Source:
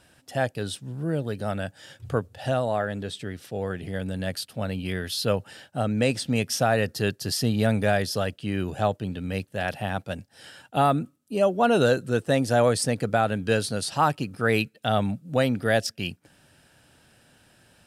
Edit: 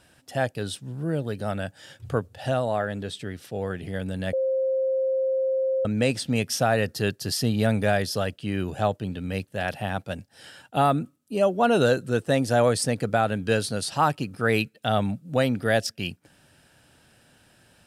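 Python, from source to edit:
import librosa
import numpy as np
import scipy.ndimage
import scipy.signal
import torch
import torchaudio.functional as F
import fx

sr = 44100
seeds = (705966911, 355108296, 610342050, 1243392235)

y = fx.edit(x, sr, fx.bleep(start_s=4.33, length_s=1.52, hz=528.0, db=-21.0), tone=tone)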